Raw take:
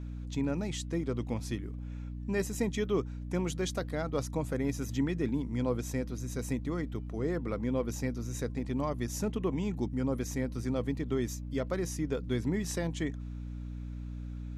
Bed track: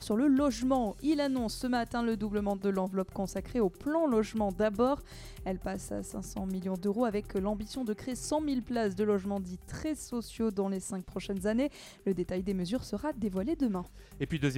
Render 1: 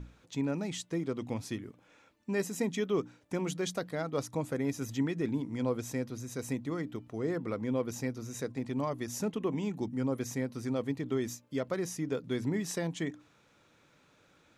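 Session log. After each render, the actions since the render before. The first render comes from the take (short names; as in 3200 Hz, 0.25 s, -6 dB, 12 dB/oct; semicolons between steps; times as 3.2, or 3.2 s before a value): notches 60/120/180/240/300 Hz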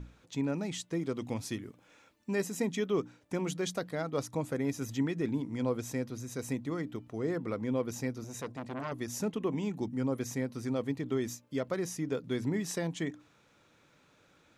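1.01–2.36 high shelf 4000 Hz +5 dB; 8.24–8.92 core saturation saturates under 1200 Hz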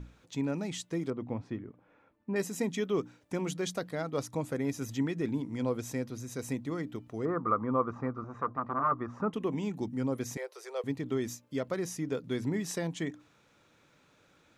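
1.1–2.36 LPF 1400 Hz; 7.25–9.33 synth low-pass 1200 Hz, resonance Q 13; 10.37–10.84 steep high-pass 390 Hz 72 dB/oct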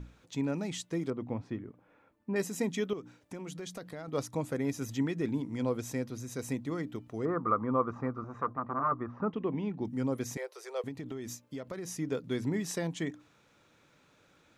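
2.93–4.08 compressor 4:1, threshold -39 dBFS; 8.53–9.85 air absorption 290 m; 10.88–11.89 compressor 5:1, threshold -36 dBFS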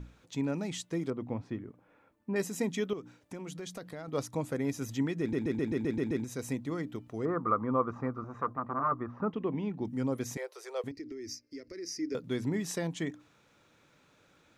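5.2 stutter in place 0.13 s, 8 plays; 10.91–12.15 EQ curve 100 Hz 0 dB, 140 Hz -24 dB, 210 Hz -12 dB, 330 Hz +4 dB, 840 Hz -23 dB, 1300 Hz -14 dB, 2100 Hz +1 dB, 3400 Hz -18 dB, 5000 Hz +12 dB, 7600 Hz -11 dB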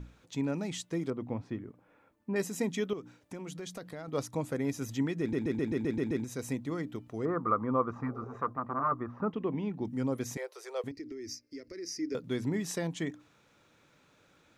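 8.05–8.34 spectral repair 380–800 Hz before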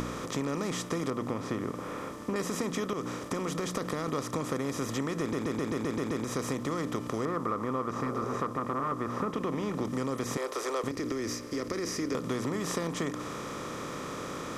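per-bin compression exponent 0.4; compressor, threshold -28 dBFS, peak gain reduction 9 dB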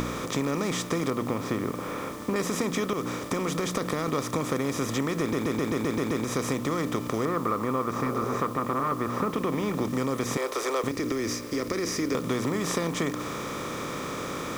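small resonant body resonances 2300/3600 Hz, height 7 dB, ringing for 25 ms; in parallel at -4 dB: requantised 8-bit, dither triangular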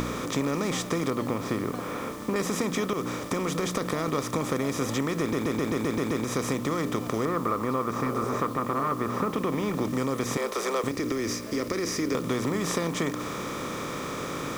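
add bed track -14 dB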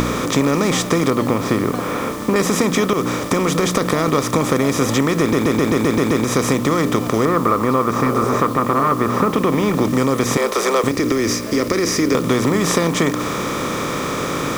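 gain +11 dB; limiter -2 dBFS, peak gain reduction 1.5 dB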